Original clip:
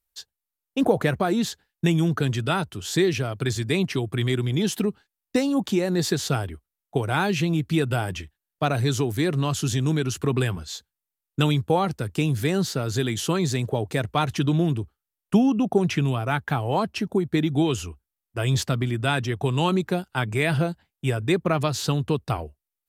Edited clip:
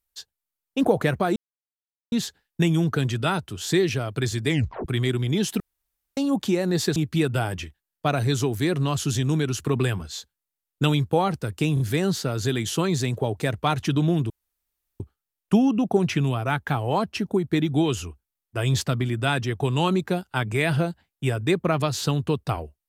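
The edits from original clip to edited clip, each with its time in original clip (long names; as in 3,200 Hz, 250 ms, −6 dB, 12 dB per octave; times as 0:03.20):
0:01.36: splice in silence 0.76 s
0:03.72: tape stop 0.38 s
0:04.84–0:05.41: fill with room tone
0:06.20–0:07.53: remove
0:12.31: stutter 0.03 s, 3 plays
0:14.81: splice in room tone 0.70 s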